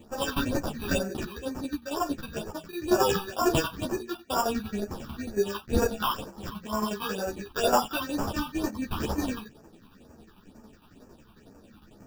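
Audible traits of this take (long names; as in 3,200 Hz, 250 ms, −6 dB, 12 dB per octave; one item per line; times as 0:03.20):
aliases and images of a low sample rate 2,100 Hz, jitter 0%
phaser sweep stages 6, 2.1 Hz, lowest notch 500–3,500 Hz
tremolo saw down 11 Hz, depth 65%
a shimmering, thickened sound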